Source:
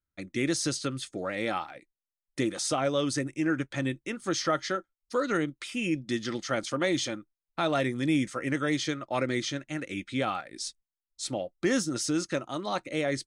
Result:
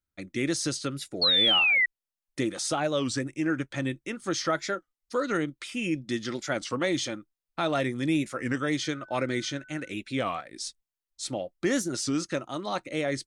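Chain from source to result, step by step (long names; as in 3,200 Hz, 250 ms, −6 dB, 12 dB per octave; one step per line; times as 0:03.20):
0:01.23–0:01.86: sound drawn into the spectrogram fall 1,900–4,700 Hz −22 dBFS
0:08.82–0:09.88: steady tone 1,500 Hz −50 dBFS
wow of a warped record 33 1/3 rpm, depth 160 cents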